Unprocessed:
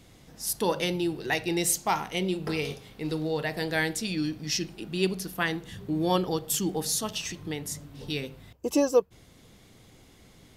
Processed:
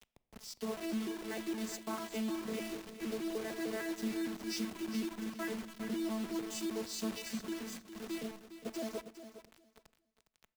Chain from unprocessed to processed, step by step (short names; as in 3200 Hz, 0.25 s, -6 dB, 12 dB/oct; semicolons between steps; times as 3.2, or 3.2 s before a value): arpeggiated vocoder bare fifth, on A3, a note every 0.152 s; compressor 4:1, threshold -36 dBFS, peak gain reduction 15 dB; limiter -32 dBFS, peak gain reduction 6.5 dB; upward compressor, threshold -49 dBFS; notch comb 300 Hz; bit-crush 8-bit; feedback echo 0.409 s, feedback 23%, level -9 dB; on a send at -18.5 dB: reverb RT60 1.2 s, pre-delay 5 ms; on the sum: three-band expander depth 40%; gain +2.5 dB